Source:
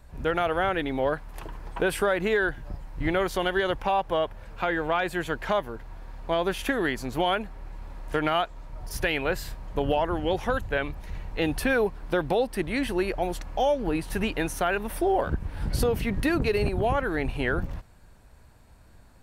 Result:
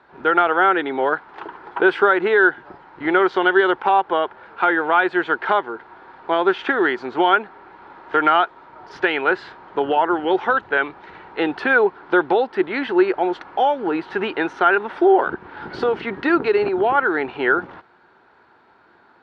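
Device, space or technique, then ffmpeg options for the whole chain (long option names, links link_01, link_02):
phone earpiece: -af "highpass=350,equalizer=frequency=370:width_type=q:width=4:gain=9,equalizer=frequency=580:width_type=q:width=4:gain=-6,equalizer=frequency=870:width_type=q:width=4:gain=6,equalizer=frequency=1400:width_type=q:width=4:gain=9,equalizer=frequency=2600:width_type=q:width=4:gain=-4,lowpass=frequency=3600:width=0.5412,lowpass=frequency=3600:width=1.3066,volume=6dB"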